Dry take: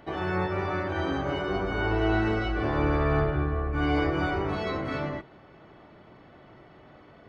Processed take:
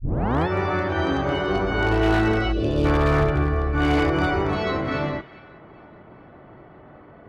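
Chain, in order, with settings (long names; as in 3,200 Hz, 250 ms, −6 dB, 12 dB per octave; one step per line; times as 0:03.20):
turntable start at the beginning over 0.47 s
on a send: delay with a high-pass on its return 407 ms, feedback 50%, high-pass 2,200 Hz, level −12 dB
on the sum: wave folding −19 dBFS
gain on a spectral selection 0:02.52–0:02.85, 660–2,400 Hz −16 dB
low-pass that shuts in the quiet parts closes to 1,500 Hz, open at −23 dBFS
level +6 dB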